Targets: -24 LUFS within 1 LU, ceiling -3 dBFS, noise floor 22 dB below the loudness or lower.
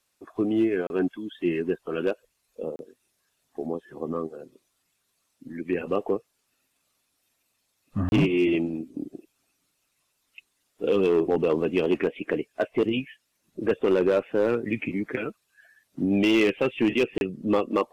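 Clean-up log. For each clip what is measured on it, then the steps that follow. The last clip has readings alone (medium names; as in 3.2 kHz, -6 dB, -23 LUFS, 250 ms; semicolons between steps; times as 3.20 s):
clipped samples 0.7%; clipping level -15.0 dBFS; dropouts 4; longest dropout 31 ms; loudness -26.0 LUFS; peak level -15.0 dBFS; loudness target -24.0 LUFS
-> clip repair -15 dBFS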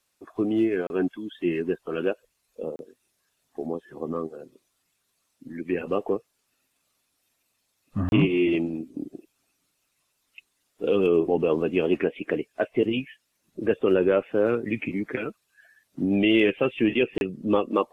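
clipped samples 0.0%; dropouts 4; longest dropout 31 ms
-> interpolate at 0.87/2.76/8.09/17.18 s, 31 ms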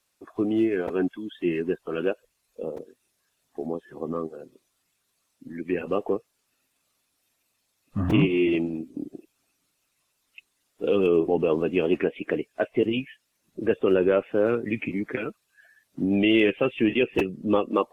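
dropouts 0; loudness -25.5 LUFS; peak level -9.5 dBFS; loudness target -24.0 LUFS
-> trim +1.5 dB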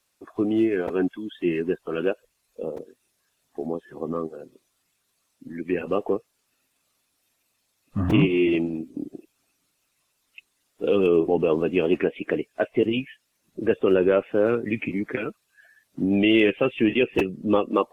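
loudness -24.0 LUFS; peak level -8.0 dBFS; noise floor -73 dBFS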